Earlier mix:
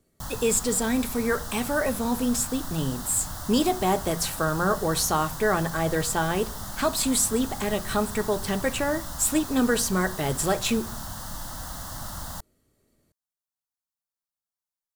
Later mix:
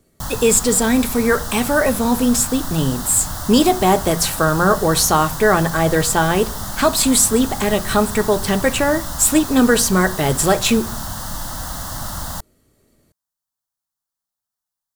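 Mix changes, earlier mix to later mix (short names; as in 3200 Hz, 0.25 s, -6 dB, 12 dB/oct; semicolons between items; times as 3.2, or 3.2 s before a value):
speech +9.0 dB; background +8.5 dB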